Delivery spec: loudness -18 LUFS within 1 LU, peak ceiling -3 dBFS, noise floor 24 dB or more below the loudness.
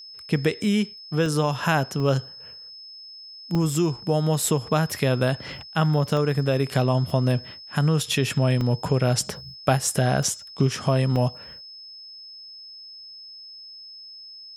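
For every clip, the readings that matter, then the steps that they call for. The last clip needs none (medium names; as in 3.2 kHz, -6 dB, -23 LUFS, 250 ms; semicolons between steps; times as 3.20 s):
dropouts 8; longest dropout 1.2 ms; steady tone 5.2 kHz; tone level -40 dBFS; loudness -23.5 LUFS; peak level -5.0 dBFS; loudness target -18.0 LUFS
-> interpolate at 1.26/2.00/3.55/6.17/7.10/8.61/9.97/11.16 s, 1.2 ms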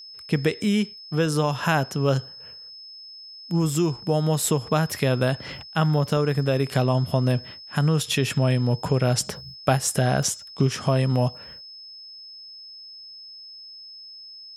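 dropouts 0; steady tone 5.2 kHz; tone level -40 dBFS
-> band-stop 5.2 kHz, Q 30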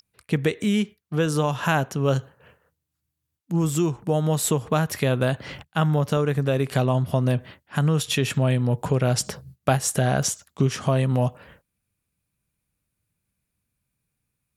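steady tone not found; loudness -23.5 LUFS; peak level -5.0 dBFS; loudness target -18.0 LUFS
-> trim +5.5 dB; peak limiter -3 dBFS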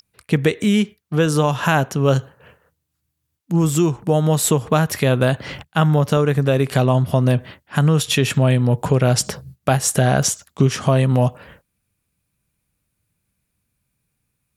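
loudness -18.5 LUFS; peak level -3.0 dBFS; noise floor -75 dBFS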